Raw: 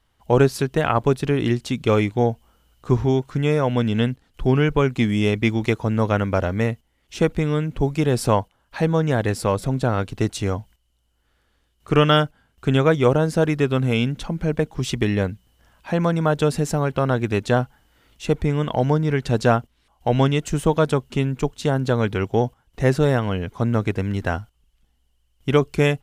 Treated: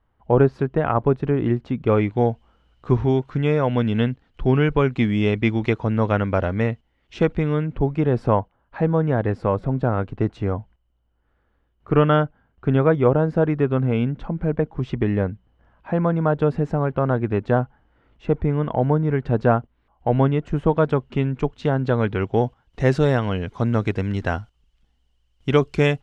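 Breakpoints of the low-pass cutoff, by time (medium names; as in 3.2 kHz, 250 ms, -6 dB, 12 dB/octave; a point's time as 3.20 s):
1.81 s 1.4 kHz
2.26 s 3.1 kHz
7.19 s 3.1 kHz
8.20 s 1.5 kHz
20.43 s 1.5 kHz
21.28 s 2.6 kHz
22.18 s 2.6 kHz
22.88 s 5.6 kHz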